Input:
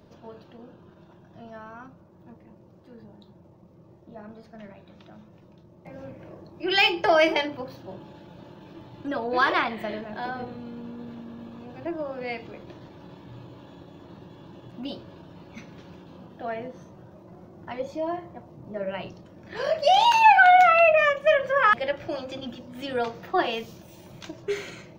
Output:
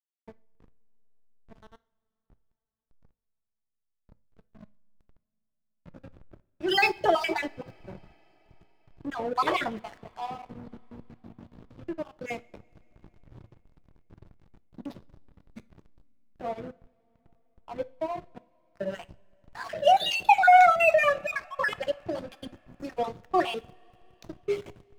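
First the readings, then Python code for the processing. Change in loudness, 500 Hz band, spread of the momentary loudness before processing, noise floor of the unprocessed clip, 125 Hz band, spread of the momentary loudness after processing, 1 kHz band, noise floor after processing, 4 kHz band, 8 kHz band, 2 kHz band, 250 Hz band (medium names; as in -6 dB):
-3.5 dB, -4.0 dB, 23 LU, -53 dBFS, -5.5 dB, 23 LU, -3.0 dB, -82 dBFS, -5.0 dB, no reading, -5.0 dB, -4.0 dB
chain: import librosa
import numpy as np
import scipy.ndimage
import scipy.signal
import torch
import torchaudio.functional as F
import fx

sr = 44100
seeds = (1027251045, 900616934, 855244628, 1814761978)

y = fx.spec_dropout(x, sr, seeds[0], share_pct=50)
y = fx.backlash(y, sr, play_db=-34.0)
y = fx.rev_double_slope(y, sr, seeds[1], early_s=0.4, late_s=4.6, knee_db=-22, drr_db=16.0)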